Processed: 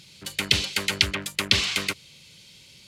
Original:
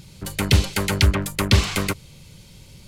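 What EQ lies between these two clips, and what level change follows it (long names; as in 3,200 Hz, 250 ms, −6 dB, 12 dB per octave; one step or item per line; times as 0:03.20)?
meter weighting curve D
−8.0 dB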